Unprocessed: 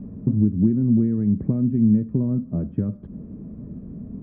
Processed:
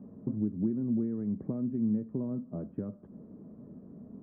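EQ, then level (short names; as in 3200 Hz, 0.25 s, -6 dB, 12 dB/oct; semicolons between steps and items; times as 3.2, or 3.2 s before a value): HPF 820 Hz 6 dB/oct; LPF 1100 Hz 12 dB/oct; 0.0 dB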